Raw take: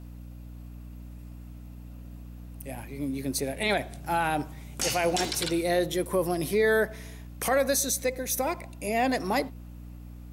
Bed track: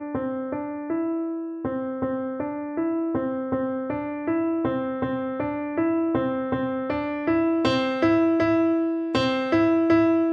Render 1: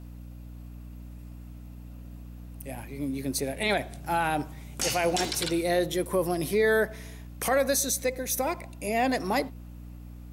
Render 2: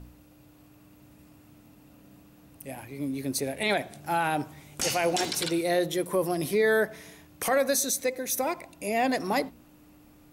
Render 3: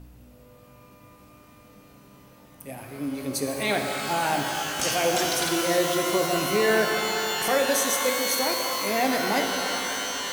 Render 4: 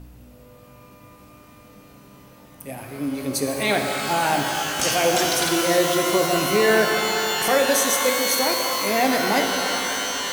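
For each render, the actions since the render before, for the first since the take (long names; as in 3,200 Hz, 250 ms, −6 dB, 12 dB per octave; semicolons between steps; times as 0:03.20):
no processing that can be heard
hum removal 60 Hz, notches 4
reverb with rising layers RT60 4 s, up +12 semitones, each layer −2 dB, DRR 2.5 dB
level +4 dB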